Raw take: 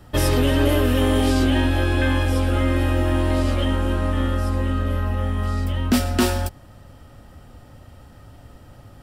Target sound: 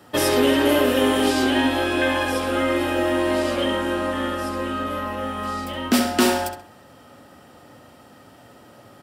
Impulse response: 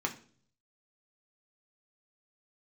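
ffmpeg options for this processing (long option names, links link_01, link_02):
-filter_complex "[0:a]highpass=240,asplit=2[link_01][link_02];[link_02]adelay=66,lowpass=frequency=4200:poles=1,volume=-5.5dB,asplit=2[link_03][link_04];[link_04]adelay=66,lowpass=frequency=4200:poles=1,volume=0.4,asplit=2[link_05][link_06];[link_06]adelay=66,lowpass=frequency=4200:poles=1,volume=0.4,asplit=2[link_07][link_08];[link_08]adelay=66,lowpass=frequency=4200:poles=1,volume=0.4,asplit=2[link_09][link_10];[link_10]adelay=66,lowpass=frequency=4200:poles=1,volume=0.4[link_11];[link_03][link_05][link_07][link_09][link_11]amix=inputs=5:normalize=0[link_12];[link_01][link_12]amix=inputs=2:normalize=0,volume=2.5dB"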